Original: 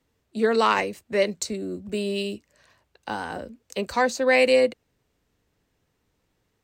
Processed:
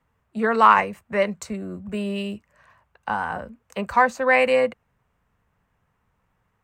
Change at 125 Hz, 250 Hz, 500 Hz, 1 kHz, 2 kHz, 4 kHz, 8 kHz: +3.0, +0.5, -1.0, +7.0, +3.0, -5.0, -7.5 dB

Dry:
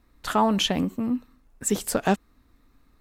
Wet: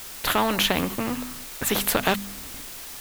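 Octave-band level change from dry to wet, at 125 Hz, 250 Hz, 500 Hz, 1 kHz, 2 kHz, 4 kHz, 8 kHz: -1.5, -3.0, 0.0, 0.0, +7.5, +3.5, +2.5 dB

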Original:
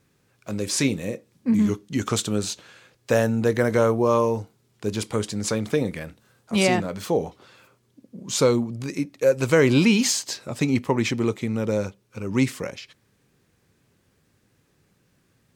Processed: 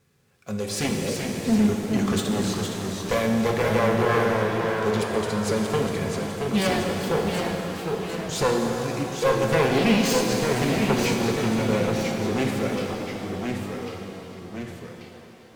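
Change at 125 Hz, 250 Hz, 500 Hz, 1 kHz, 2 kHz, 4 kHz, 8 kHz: 0.0, 0.0, 0.0, +4.0, +1.5, +0.5, -3.0 dB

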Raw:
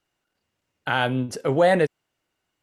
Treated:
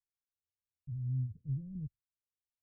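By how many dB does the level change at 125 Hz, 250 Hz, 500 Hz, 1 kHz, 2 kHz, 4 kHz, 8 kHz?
-5.5 dB, -18.0 dB, under -40 dB, under -40 dB, under -40 dB, under -40 dB, under -35 dB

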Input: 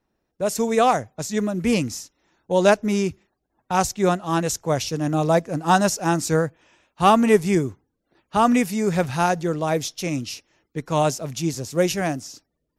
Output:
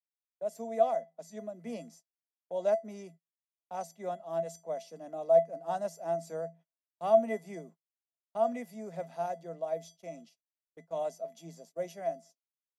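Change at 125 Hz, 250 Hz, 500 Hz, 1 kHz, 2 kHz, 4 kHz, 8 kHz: -25.0 dB, -22.0 dB, -9.0 dB, -14.0 dB, -23.0 dB, under -25 dB, under -20 dB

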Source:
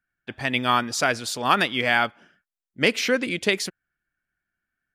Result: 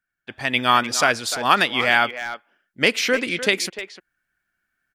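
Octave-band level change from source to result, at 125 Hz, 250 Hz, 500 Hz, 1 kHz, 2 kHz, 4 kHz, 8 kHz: -1.0, 0.0, +1.5, +3.5, +4.0, +4.0, +4.0 dB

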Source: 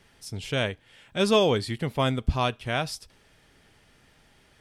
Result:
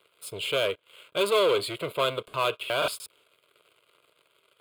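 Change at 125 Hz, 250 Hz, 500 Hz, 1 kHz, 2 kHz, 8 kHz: -14.0, -10.5, +0.5, -0.5, 0.0, +0.5 dB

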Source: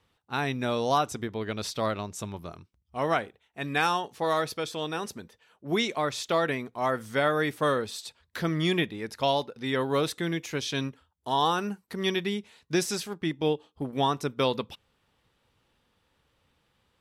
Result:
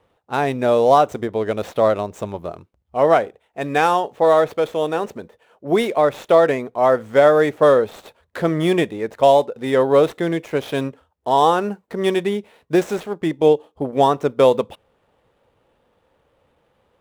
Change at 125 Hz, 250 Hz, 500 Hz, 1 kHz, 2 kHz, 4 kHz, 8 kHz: +5.0 dB, +8.0 dB, +14.0 dB, +10.0 dB, +4.5 dB, +0.5 dB, n/a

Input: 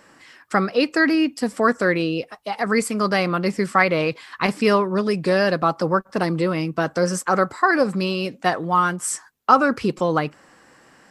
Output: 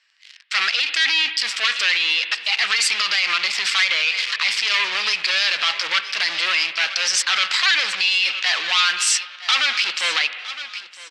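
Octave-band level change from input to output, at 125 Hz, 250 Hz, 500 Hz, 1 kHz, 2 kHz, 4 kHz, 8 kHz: under -30 dB, under -25 dB, -20.0 dB, -7.0 dB, +6.0 dB, +16.0 dB, +8.5 dB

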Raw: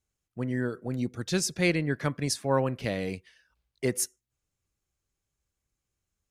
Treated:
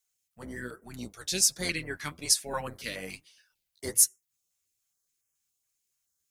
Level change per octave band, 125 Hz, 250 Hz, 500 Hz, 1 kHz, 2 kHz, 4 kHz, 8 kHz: -13.0, -11.0, -9.5, -5.5, -3.0, +5.0, +8.5 dB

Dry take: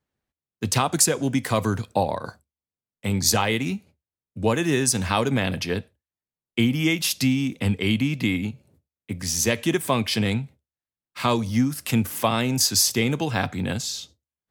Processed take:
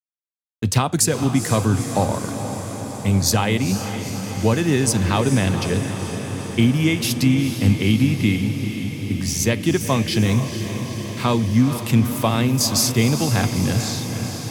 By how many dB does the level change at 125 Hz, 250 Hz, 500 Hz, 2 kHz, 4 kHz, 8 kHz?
+8.0, +5.0, +2.5, +1.0, +1.0, +1.0 dB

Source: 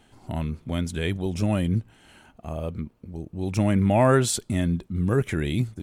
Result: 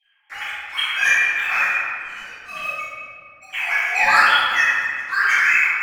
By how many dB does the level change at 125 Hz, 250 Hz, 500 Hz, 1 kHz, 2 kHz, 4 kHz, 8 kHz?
under -30 dB, under -20 dB, -12.0 dB, +10.0 dB, +21.5 dB, +12.0 dB, -1.0 dB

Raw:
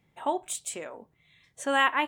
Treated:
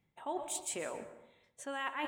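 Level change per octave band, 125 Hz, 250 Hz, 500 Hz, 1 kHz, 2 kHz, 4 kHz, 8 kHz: -1.5, -9.0, -8.5, -12.0, -14.0, -12.0, -4.5 dB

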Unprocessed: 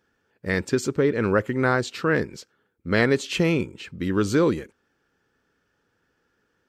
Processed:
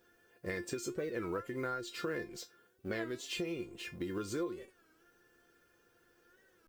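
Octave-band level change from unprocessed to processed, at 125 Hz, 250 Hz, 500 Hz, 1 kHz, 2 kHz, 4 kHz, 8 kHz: -20.5, -16.5, -16.0, -15.0, -16.5, -11.5, -10.0 dB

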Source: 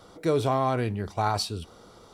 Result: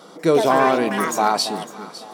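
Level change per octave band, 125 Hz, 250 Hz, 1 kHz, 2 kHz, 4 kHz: -4.0, +8.5, +9.0, +13.5, +8.5 dB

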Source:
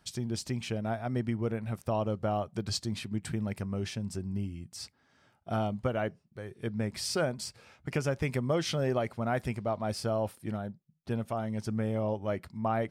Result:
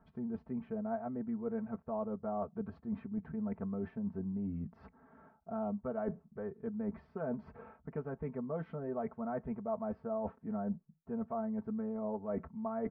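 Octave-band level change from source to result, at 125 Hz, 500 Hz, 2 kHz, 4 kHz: -12.0 dB, -6.0 dB, -15.5 dB, under -35 dB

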